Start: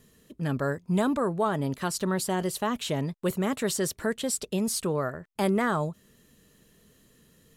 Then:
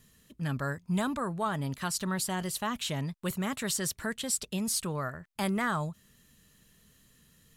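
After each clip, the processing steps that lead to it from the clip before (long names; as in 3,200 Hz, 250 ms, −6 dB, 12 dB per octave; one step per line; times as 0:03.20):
parametric band 420 Hz −10.5 dB 1.7 octaves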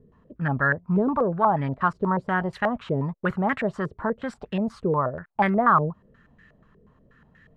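low-pass on a step sequencer 8.3 Hz 440–1,800 Hz
level +6 dB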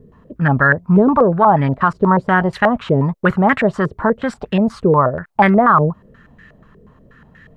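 boost into a limiter +11.5 dB
level −1 dB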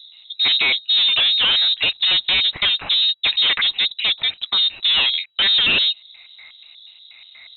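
hard clipping −16.5 dBFS, distortion −6 dB
voice inversion scrambler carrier 3,900 Hz
level +1.5 dB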